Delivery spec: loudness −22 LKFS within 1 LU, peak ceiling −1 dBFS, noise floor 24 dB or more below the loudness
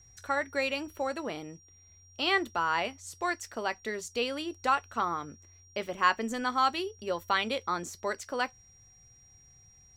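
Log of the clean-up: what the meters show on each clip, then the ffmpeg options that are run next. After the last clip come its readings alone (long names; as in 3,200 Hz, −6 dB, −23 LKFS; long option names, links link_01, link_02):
interfering tone 5,700 Hz; level of the tone −57 dBFS; integrated loudness −31.5 LKFS; sample peak −10.0 dBFS; target loudness −22.0 LKFS
→ -af "bandreject=frequency=5700:width=30"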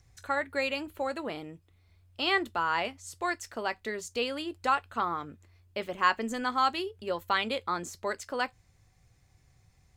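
interfering tone none found; integrated loudness −31.5 LKFS; sample peak −9.5 dBFS; target loudness −22.0 LKFS
→ -af "volume=9.5dB,alimiter=limit=-1dB:level=0:latency=1"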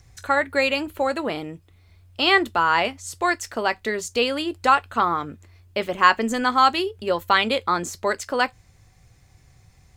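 integrated loudness −22.0 LKFS; sample peak −1.0 dBFS; background noise floor −56 dBFS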